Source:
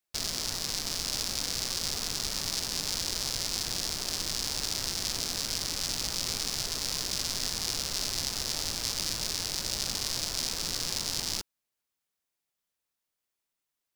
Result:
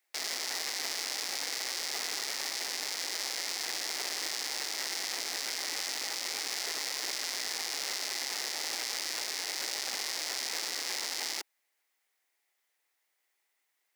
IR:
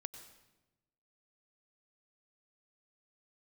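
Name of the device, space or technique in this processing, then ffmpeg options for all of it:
laptop speaker: -af "highpass=f=320:w=0.5412,highpass=f=320:w=1.3066,equalizer=f=800:t=o:w=0.27:g=6,equalizer=f=2k:t=o:w=0.47:g=11,alimiter=limit=-24dB:level=0:latency=1:release=50,volume=5.5dB"

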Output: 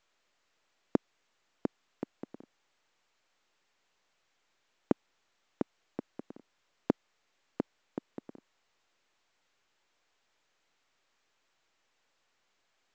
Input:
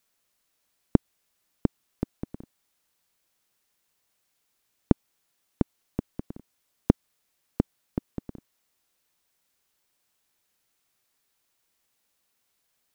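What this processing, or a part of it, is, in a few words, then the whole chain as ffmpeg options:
telephone: -af "highpass=330,lowpass=3.1k,volume=-2.5dB" -ar 16000 -c:a pcm_mulaw

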